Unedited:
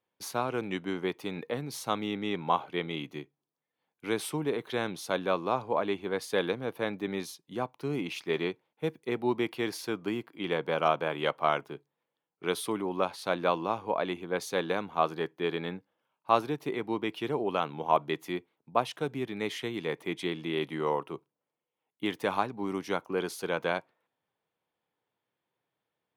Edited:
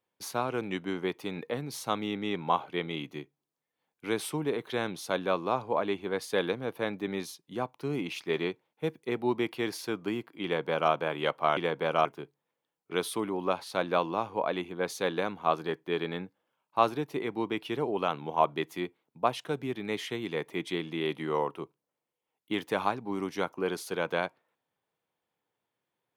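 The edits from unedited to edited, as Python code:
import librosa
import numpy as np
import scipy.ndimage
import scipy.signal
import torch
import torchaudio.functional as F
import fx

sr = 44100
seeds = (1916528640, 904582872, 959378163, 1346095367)

y = fx.edit(x, sr, fx.duplicate(start_s=10.44, length_s=0.48, to_s=11.57), tone=tone)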